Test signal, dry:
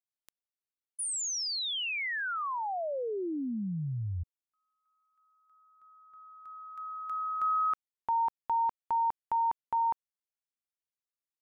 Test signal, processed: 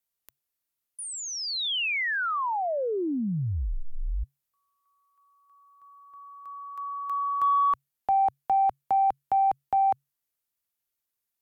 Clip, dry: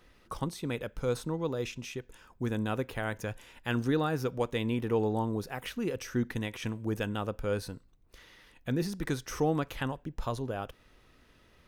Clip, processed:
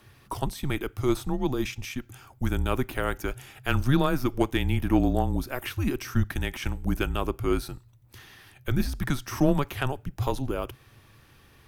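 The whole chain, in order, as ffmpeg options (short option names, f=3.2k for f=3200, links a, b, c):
-filter_complex "[0:a]afreqshift=-140,equalizer=f=14k:w=0.84:g=10.5,acrossover=split=3900[a][b];[b]acompressor=threshold=-44dB:ratio=4:attack=1:release=60[c];[a][c]amix=inputs=2:normalize=0,aeval=exprs='0.168*(cos(1*acos(clip(val(0)/0.168,-1,1)))-cos(1*PI/2))+0.0133*(cos(3*acos(clip(val(0)/0.168,-1,1)))-cos(3*PI/2))':c=same,volume=8dB"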